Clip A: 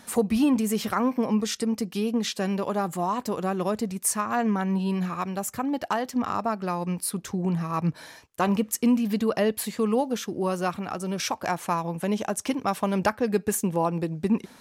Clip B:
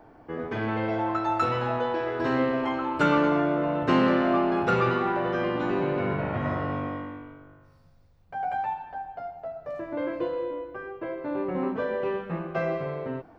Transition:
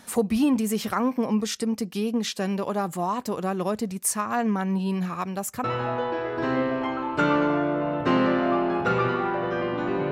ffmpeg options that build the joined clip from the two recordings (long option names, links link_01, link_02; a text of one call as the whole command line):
ffmpeg -i cue0.wav -i cue1.wav -filter_complex "[0:a]apad=whole_dur=10.11,atrim=end=10.11,atrim=end=5.642[link_01];[1:a]atrim=start=1.458:end=5.93[link_02];[link_01][link_02]acrossfade=duration=0.004:curve1=hsin:curve2=hsin" out.wav